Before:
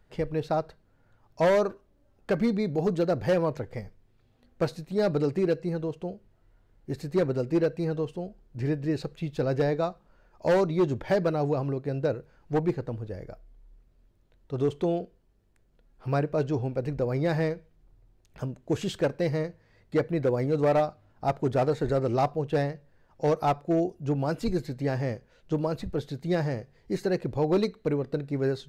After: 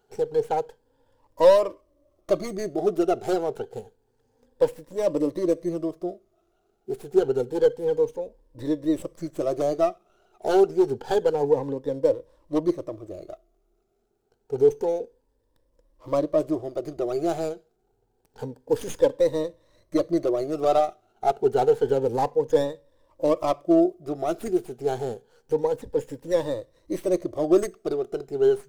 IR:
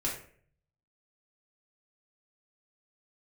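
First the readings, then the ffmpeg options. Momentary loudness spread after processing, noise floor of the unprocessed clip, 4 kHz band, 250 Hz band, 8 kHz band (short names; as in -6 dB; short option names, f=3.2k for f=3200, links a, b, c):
13 LU, -64 dBFS, +1.0 dB, +1.5 dB, n/a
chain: -filter_complex "[0:a]afftfilt=real='re*pow(10,17/40*sin(2*PI*(1.1*log(max(b,1)*sr/1024/100)/log(2)-(0.28)*(pts-256)/sr)))':imag='im*pow(10,17/40*sin(2*PI*(1.1*log(max(b,1)*sr/1024/100)/log(2)-(0.28)*(pts-256)/sr)))':win_size=1024:overlap=0.75,lowshelf=f=260:t=q:w=1.5:g=-10,acrossover=split=1400[a][b];[b]aeval=exprs='abs(val(0))':c=same[c];[a][c]amix=inputs=2:normalize=0"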